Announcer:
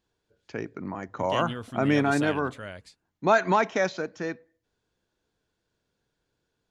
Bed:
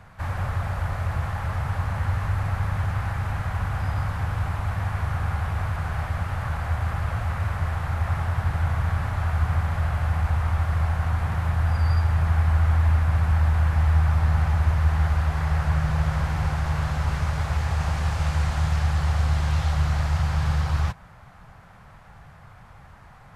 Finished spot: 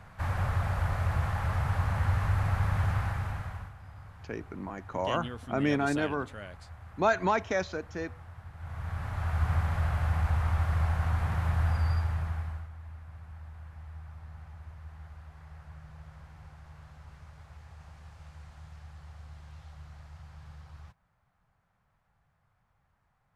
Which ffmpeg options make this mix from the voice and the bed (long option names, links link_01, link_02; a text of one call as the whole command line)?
ffmpeg -i stem1.wav -i stem2.wav -filter_complex "[0:a]adelay=3750,volume=-4.5dB[link_01];[1:a]volume=15dB,afade=type=out:start_time=2.92:duration=0.82:silence=0.105925,afade=type=in:start_time=8.56:duration=0.95:silence=0.133352,afade=type=out:start_time=11.63:duration=1.06:silence=0.0891251[link_02];[link_01][link_02]amix=inputs=2:normalize=0" out.wav